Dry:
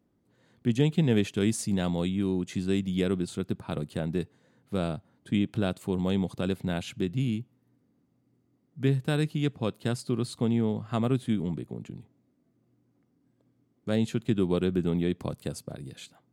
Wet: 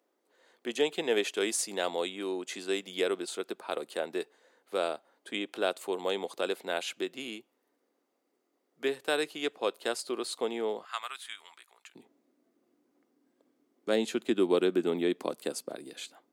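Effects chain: high-pass 410 Hz 24 dB/octave, from 10.85 s 1.1 kHz, from 11.95 s 300 Hz; trim +3.5 dB

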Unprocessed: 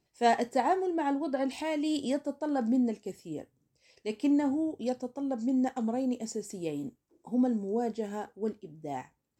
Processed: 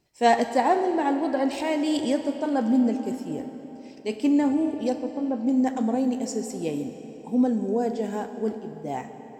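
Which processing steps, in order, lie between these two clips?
4.99–5.47 s: distance through air 360 m; reverberation RT60 4.0 s, pre-delay 5 ms, DRR 8 dB; trim +5.5 dB

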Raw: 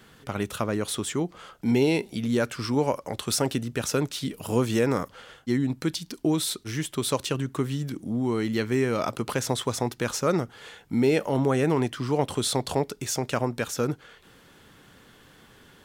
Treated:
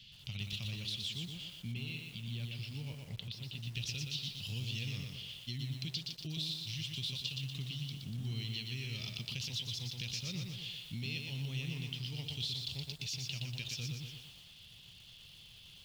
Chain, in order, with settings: FFT filter 120 Hz 0 dB, 180 Hz -6 dB, 280 Hz -22 dB, 620 Hz -27 dB, 1.5 kHz -28 dB, 2.8 kHz +9 dB, 4.8 kHz +7 dB, 8.8 kHz -17 dB, 14 kHz -10 dB; compression 4:1, threshold -36 dBFS, peak gain reduction 14 dB; 1.50–3.58 s: distance through air 250 m; bit-crushed delay 120 ms, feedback 55%, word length 9-bit, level -3.5 dB; trim -3 dB

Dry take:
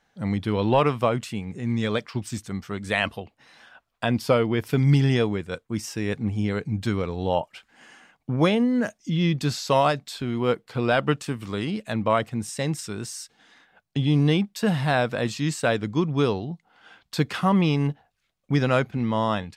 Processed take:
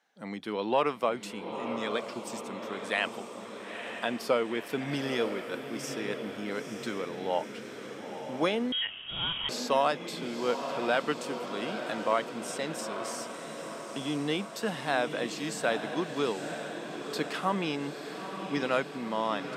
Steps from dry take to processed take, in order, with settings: Bessel high-pass 320 Hz, order 4; echo that smears into a reverb 919 ms, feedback 64%, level -8 dB; 8.72–9.49 s: frequency inversion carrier 3.5 kHz; trim -5 dB

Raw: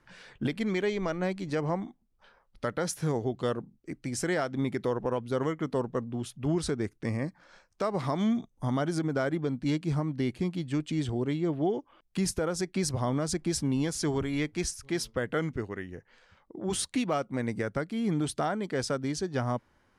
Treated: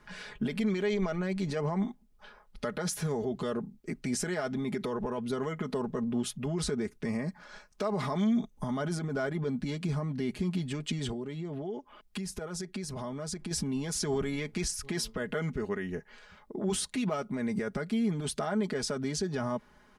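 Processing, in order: peak limiter -30.5 dBFS, peak gain reduction 11.5 dB; comb 4.8 ms, depth 69%; 11.11–13.51 s: compression 4:1, threshold -40 dBFS, peak gain reduction 9 dB; trim +5 dB

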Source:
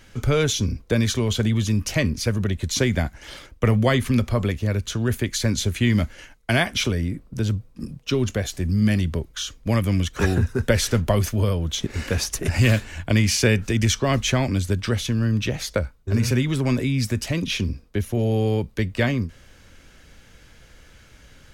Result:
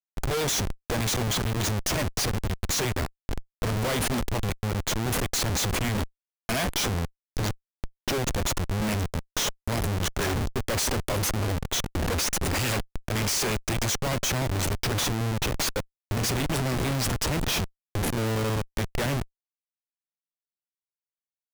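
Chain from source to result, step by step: tone controls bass -8 dB, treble +14 dB; Schmitt trigger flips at -24 dBFS; trim -2.5 dB

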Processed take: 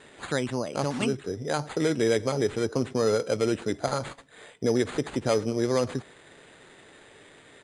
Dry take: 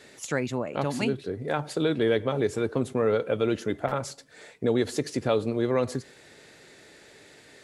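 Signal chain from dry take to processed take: sample-and-hold 8×; resampled via 22.05 kHz

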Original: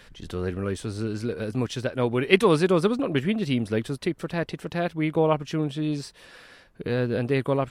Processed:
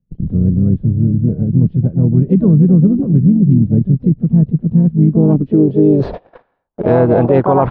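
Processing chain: resonant high shelf 5 kHz -8.5 dB, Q 3; harmony voices -4 st -15 dB, +5 st -7 dB; low-pass sweep 170 Hz -> 900 Hz, 4.93–6.47 s; gate -44 dBFS, range -41 dB; reverse; upward compressor, threshold -23 dBFS; reverse; loudness maximiser +15 dB; trim -1 dB

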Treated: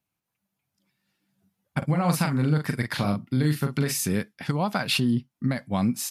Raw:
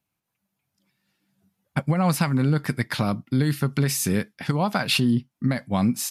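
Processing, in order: 1.78–4.01 s: doubling 40 ms -6 dB; trim -2.5 dB

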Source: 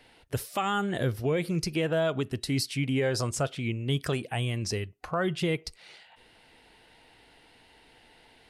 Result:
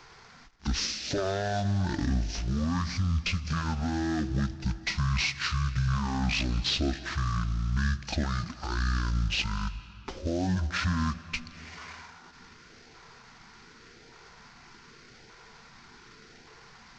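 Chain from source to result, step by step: CVSD coder 64 kbps; treble shelf 7.3 kHz +9 dB; peak limiter -24.5 dBFS, peak gain reduction 7 dB; LFO notch saw up 1.7 Hz 430–2500 Hz; reverberation RT60 1.8 s, pre-delay 55 ms, DRR 16 dB; speed mistake 15 ips tape played at 7.5 ips; trim +5 dB

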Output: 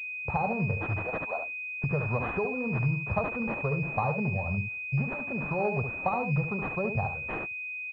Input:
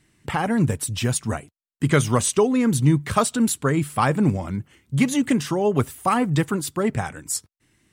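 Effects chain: gate -47 dBFS, range -13 dB; 0.98–1.84 s: high-pass 510 Hz 24 dB/octave; compression, threshold -21 dBFS, peak gain reduction 9 dB; static phaser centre 720 Hz, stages 4; on a send: delay 71 ms -7 dB; on the sum: class-D stage that switches slowly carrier 2.5 kHz

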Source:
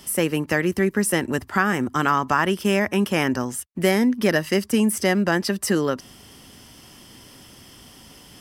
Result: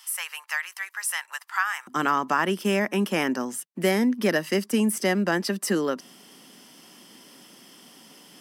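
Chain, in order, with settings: steep high-pass 910 Hz 36 dB/octave, from 1.87 s 170 Hz; trim -3 dB

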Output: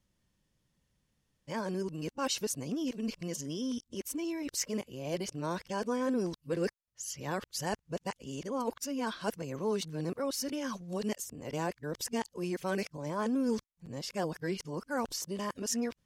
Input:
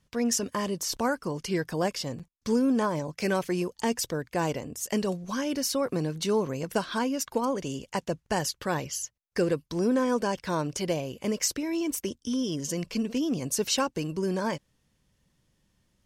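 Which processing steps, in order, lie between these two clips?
reverse the whole clip; trim -6.5 dB

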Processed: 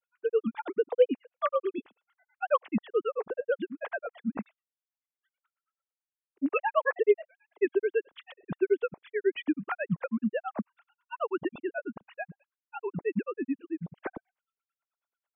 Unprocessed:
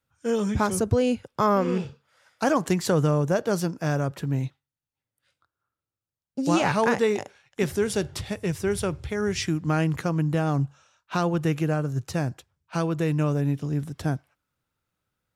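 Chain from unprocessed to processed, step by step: formants replaced by sine waves; granulator 80 ms, grains 9.2 per s, spray 19 ms, pitch spread up and down by 0 st

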